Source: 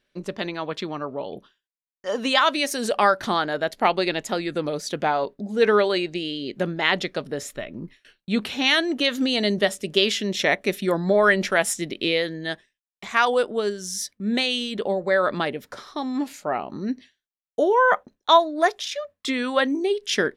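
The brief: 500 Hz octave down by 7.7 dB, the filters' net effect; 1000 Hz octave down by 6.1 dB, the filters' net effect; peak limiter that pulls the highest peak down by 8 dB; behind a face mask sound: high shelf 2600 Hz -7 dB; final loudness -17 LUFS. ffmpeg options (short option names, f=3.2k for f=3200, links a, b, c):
-af "equalizer=f=500:t=o:g=-8.5,equalizer=f=1k:t=o:g=-4,alimiter=limit=-13.5dB:level=0:latency=1,highshelf=f=2.6k:g=-7,volume=12.5dB"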